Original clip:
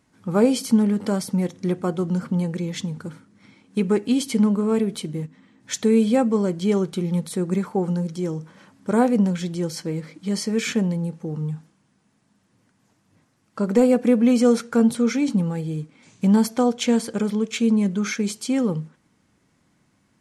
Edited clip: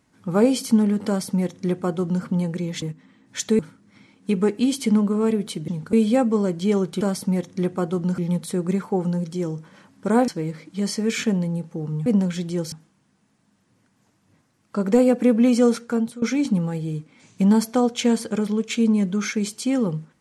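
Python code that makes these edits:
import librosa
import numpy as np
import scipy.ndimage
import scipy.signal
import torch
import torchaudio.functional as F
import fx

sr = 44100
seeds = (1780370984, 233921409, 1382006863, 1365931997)

y = fx.edit(x, sr, fx.duplicate(start_s=1.07, length_s=1.17, to_s=7.01),
    fx.swap(start_s=2.82, length_s=0.25, other_s=5.16, other_length_s=0.77),
    fx.move(start_s=9.11, length_s=0.66, to_s=11.55),
    fx.fade_out_to(start_s=14.33, length_s=0.72, curve='qsin', floor_db=-19.0), tone=tone)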